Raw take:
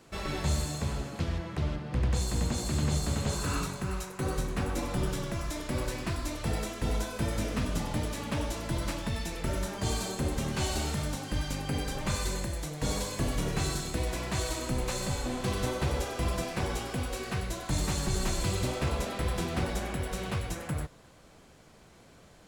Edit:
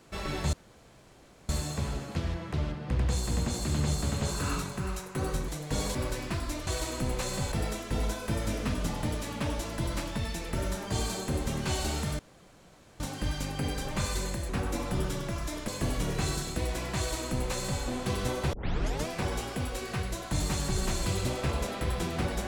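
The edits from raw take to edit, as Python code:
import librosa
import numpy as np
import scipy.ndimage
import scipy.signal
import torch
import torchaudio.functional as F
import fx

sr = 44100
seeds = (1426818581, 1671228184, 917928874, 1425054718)

y = fx.edit(x, sr, fx.insert_room_tone(at_s=0.53, length_s=0.96),
    fx.swap(start_s=4.52, length_s=1.19, other_s=12.59, other_length_s=0.47),
    fx.insert_room_tone(at_s=11.1, length_s=0.81),
    fx.duplicate(start_s=14.36, length_s=0.85, to_s=6.43),
    fx.tape_start(start_s=15.91, length_s=0.54), tone=tone)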